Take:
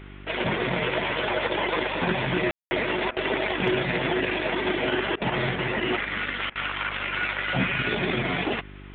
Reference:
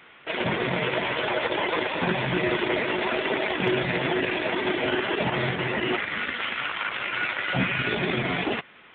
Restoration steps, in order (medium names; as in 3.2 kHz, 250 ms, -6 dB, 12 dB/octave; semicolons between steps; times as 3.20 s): de-hum 49.1 Hz, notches 8; room tone fill 2.51–2.71 s; interpolate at 3.11/5.16/6.50 s, 54 ms